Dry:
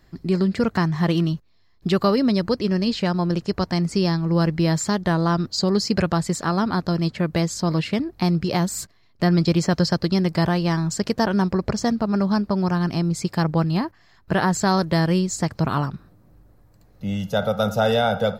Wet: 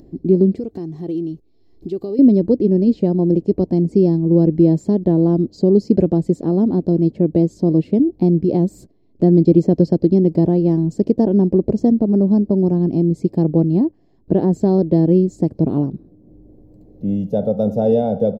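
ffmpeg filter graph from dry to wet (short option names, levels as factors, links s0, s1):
-filter_complex "[0:a]asettb=1/sr,asplit=3[s0][s1][s2];[s0]atrim=end=0.564[s3];[s1]atrim=start=0.56:end=2.19,asetpts=PTS-STARTPTS,afade=t=in:d=0.004:c=qsin,afade=t=out:st=1.626:d=0.004:c=qsin,highshelf=f=2200:g=12,aecho=1:1:2.6:0.37,atrim=end_sample=71883,acompressor=threshold=0.0126:ratio=2:attack=3.2:release=140:knee=1:detection=peak[s4];[s2]atrim=start=2.186[s5];[s3][s4]acrossfade=d=0.004:c1=hsin:c2=qsin[s6];[s6][s5]acrossfade=d=0.004:c1=qsin:c2=hsin,firequalizer=gain_entry='entry(110,0);entry(300,13);entry(1300,-26);entry(2400,-19)':delay=0.05:min_phase=1,acompressor=mode=upward:threshold=0.0141:ratio=2.5"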